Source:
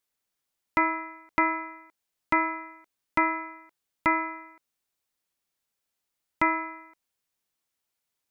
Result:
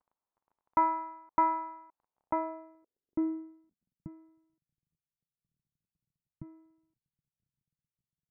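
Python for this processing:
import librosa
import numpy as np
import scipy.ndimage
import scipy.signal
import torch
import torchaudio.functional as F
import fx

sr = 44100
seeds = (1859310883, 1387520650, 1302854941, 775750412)

y = fx.dmg_crackle(x, sr, seeds[0], per_s=23.0, level_db=-45.0)
y = fx.filter_sweep_lowpass(y, sr, from_hz=970.0, to_hz=150.0, start_s=2.09, end_s=4.16, q=3.3)
y = y * 10.0 ** (-8.0 / 20.0)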